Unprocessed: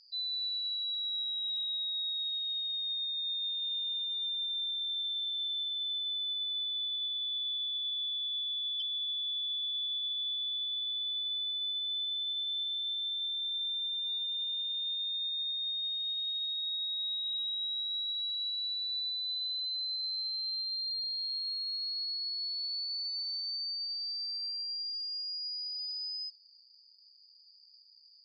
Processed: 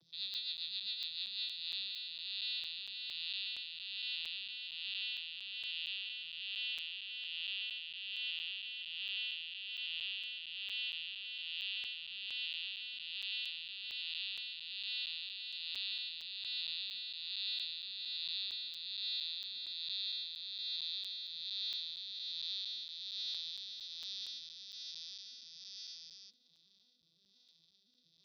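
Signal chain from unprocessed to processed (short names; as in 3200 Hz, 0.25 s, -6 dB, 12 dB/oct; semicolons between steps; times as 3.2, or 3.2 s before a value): arpeggiated vocoder minor triad, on E3, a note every 0.173 s; LPF 4100 Hz 24 dB/oct; tilt -4.5 dB/oct; limiter -37 dBFS, peak gain reduction 7 dB; rotary speaker horn 7.5 Hz, later 1.2 Hz, at 0.89; crackling interface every 0.23 s, samples 256, zero, from 0.34; gain +9 dB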